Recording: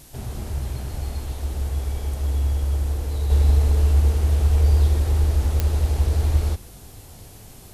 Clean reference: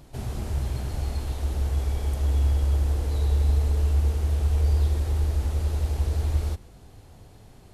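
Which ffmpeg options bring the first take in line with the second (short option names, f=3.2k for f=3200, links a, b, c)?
-af "adeclick=t=4,agate=range=-21dB:threshold=-35dB,asetnsamples=n=441:p=0,asendcmd='3.3 volume volume -5dB',volume=0dB"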